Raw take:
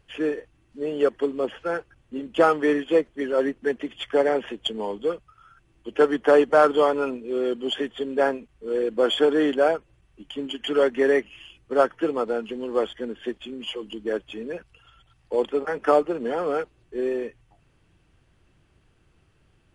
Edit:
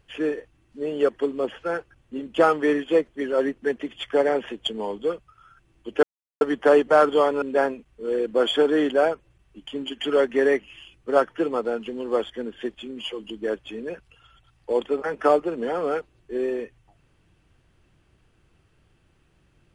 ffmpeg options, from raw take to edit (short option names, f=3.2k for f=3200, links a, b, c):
-filter_complex "[0:a]asplit=3[a][b][c];[a]atrim=end=6.03,asetpts=PTS-STARTPTS,afade=t=out:st=6.026:d=0.004:c=hsin,apad=pad_dur=0.38[d];[b]atrim=start=6.03:end=7.042,asetpts=PTS-STARTPTS,afade=t=in:d=0.004:c=hsin[e];[c]atrim=start=8.048[f];[d][e]concat=n=2:v=0:a=1[g];[g][f]acrossfade=d=0.004:c1=hsin:c2=hsin"